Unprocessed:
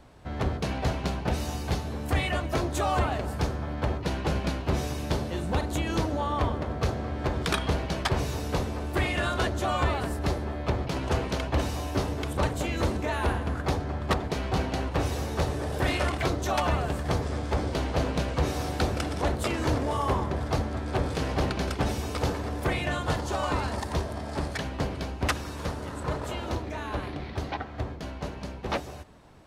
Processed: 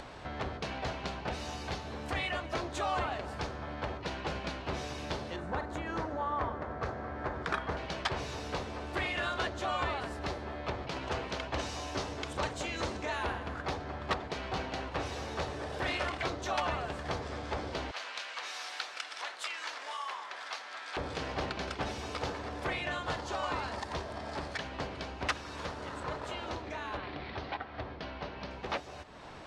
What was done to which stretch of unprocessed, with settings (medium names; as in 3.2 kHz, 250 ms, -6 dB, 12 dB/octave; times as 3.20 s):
5.36–7.77 s: resonant high shelf 2.2 kHz -8 dB, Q 1.5
11.47–13.23 s: dynamic bell 6.7 kHz, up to +6 dB, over -53 dBFS, Q 0.99
17.91–20.97 s: high-pass 1.4 kHz
26.97–28.51 s: Savitzky-Golay filter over 15 samples
whole clip: low-pass 5.4 kHz 12 dB/octave; bass shelf 400 Hz -11 dB; upward compressor, threshold -31 dBFS; trim -3 dB